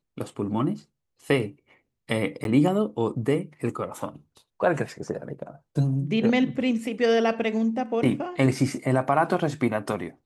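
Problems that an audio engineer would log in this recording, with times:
0:02.44–0:02.45: drop-out 12 ms

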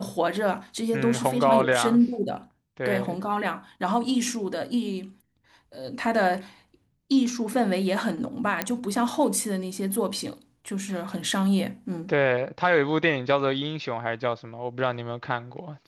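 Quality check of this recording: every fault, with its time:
0:08.62: click −8 dBFS

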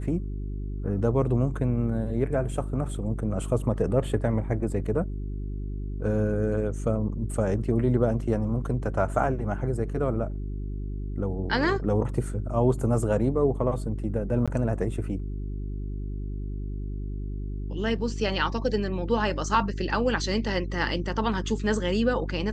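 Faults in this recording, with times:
mains hum 50 Hz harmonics 8 −32 dBFS
0:14.46–0:14.48: drop-out 16 ms

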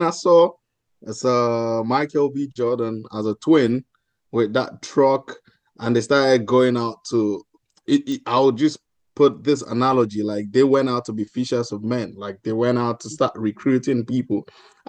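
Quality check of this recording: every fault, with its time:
0:08.12: click −17 dBFS

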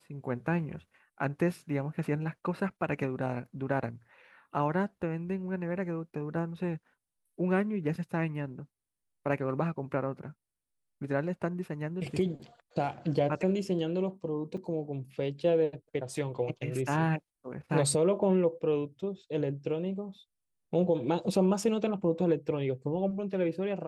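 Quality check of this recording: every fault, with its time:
0:14.57–0:14.58: drop-out 5.4 ms

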